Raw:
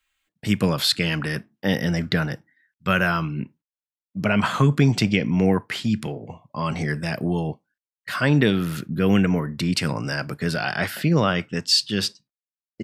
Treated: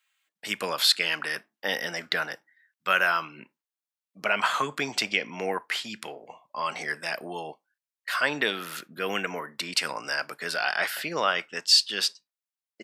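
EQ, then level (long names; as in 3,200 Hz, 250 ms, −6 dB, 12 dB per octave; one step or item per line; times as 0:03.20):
high-pass filter 680 Hz 12 dB per octave
0.0 dB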